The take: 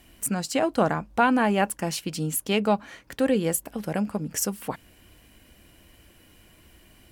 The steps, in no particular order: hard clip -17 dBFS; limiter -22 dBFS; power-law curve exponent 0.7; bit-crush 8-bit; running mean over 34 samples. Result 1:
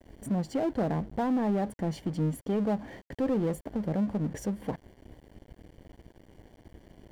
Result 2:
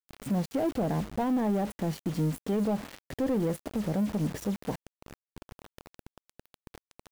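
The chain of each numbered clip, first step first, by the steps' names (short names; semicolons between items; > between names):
bit-crush > running mean > hard clip > limiter > power-law curve; hard clip > running mean > bit-crush > power-law curve > limiter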